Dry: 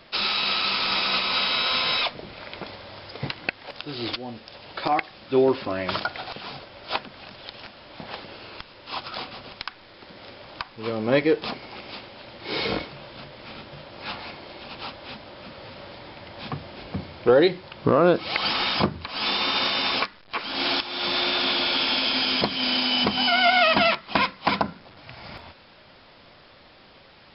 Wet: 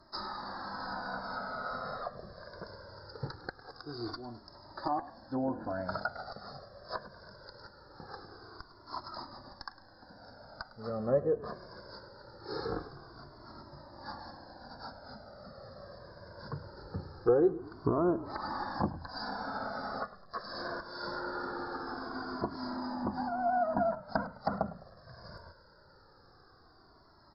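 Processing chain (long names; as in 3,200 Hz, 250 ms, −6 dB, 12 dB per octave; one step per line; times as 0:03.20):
treble cut that deepens with the level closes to 880 Hz, closed at −17.5 dBFS
elliptic band-stop filter 1,600–4,600 Hz, stop band 60 dB
on a send: echo with shifted repeats 104 ms, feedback 46%, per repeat −37 Hz, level −17 dB
on the sum: flanger whose copies keep moving one way falling 0.22 Hz
level −3 dB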